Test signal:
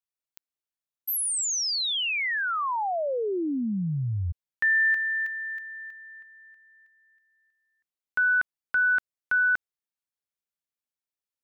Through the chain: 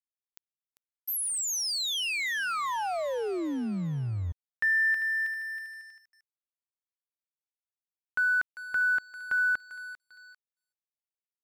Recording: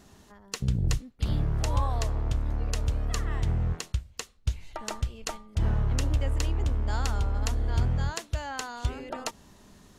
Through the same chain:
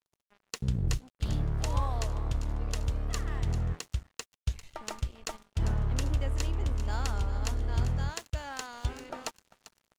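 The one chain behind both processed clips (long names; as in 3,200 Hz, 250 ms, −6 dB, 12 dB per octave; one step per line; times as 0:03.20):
feedback echo with a high-pass in the loop 396 ms, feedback 53%, high-pass 900 Hz, level −12 dB
dead-zone distortion −46.5 dBFS
level −2.5 dB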